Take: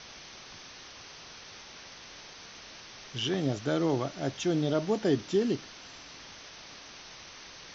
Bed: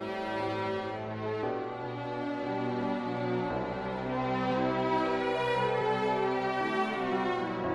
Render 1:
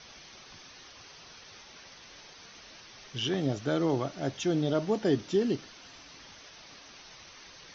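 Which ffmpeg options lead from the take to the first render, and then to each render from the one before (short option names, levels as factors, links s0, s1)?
-af "afftdn=nr=6:nf=-49"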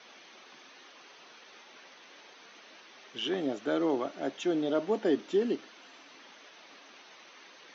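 -af "highpass=f=240:w=0.5412,highpass=f=240:w=1.3066,equalizer=f=5300:w=1.8:g=-10"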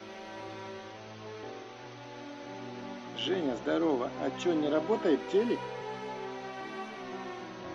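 -filter_complex "[1:a]volume=0.299[s0];[0:a][s0]amix=inputs=2:normalize=0"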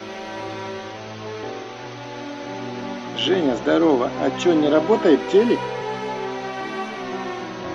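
-af "volume=3.98"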